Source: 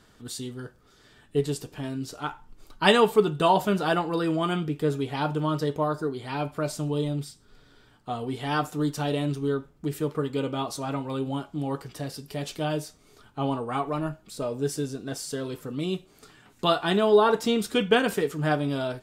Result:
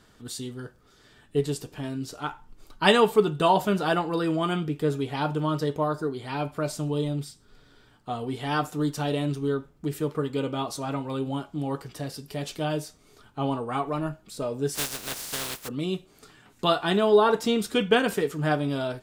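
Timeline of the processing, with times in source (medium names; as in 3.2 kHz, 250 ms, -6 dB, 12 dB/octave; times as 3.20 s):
14.74–15.67 s: spectral contrast reduction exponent 0.22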